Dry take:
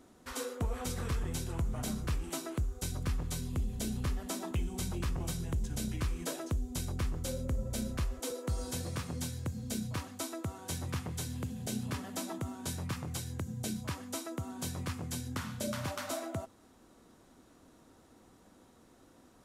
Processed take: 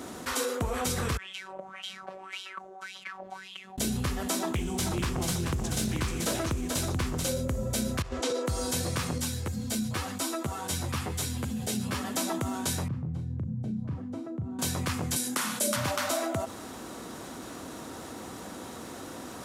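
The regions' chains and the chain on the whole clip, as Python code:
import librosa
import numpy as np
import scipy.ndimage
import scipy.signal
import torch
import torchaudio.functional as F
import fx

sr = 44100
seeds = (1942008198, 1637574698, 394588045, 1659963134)

y = fx.chain(x, sr, fx.wah_lfo(hz=1.8, low_hz=590.0, high_hz=3200.0, q=9.7),
    fx.robotise(hz=190.0), at=(1.17, 3.78))
y = fx.chain(y, sr, fx.echo_single(ms=435, db=-6.5),
    fx.doppler_dist(depth_ms=0.26), at=(4.39, 7.27))
y = fx.chain(y, sr, fx.lowpass(hz=5600.0, slope=12),
    fx.over_compress(threshold_db=-38.0, ratio=-0.5), at=(8.02, 8.46))
y = fx.chain(y, sr, fx.notch(hz=6300.0, q=23.0),
    fx.ensemble(), at=(9.18, 12.15))
y = fx.chain(y, sr, fx.bandpass_q(hz=130.0, q=1.5),
    fx.doubler(ms=37.0, db=-9), at=(12.88, 14.59))
y = fx.chain(y, sr, fx.highpass(hz=220.0, slope=24),
    fx.peak_eq(hz=10000.0, db=9.5, octaves=1.0),
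    fx.doubler(ms=33.0, db=-14), at=(15.16, 15.76))
y = scipy.signal.sosfilt(scipy.signal.butter(2, 72.0, 'highpass', fs=sr, output='sos'), y)
y = fx.low_shelf(y, sr, hz=450.0, db=-4.5)
y = fx.env_flatten(y, sr, amount_pct=50)
y = y * librosa.db_to_amplitude(6.5)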